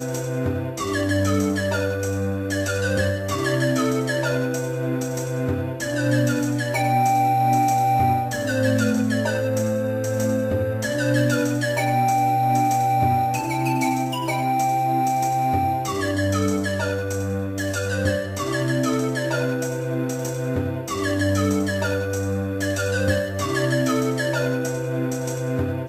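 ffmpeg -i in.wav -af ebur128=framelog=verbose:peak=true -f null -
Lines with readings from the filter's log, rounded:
Integrated loudness:
  I:         -22.4 LUFS
  Threshold: -32.4 LUFS
Loudness range:
  LRA:         3.5 LU
  Threshold: -42.2 LUFS
  LRA low:   -23.9 LUFS
  LRA high:  -20.4 LUFS
True peak:
  Peak:       -7.7 dBFS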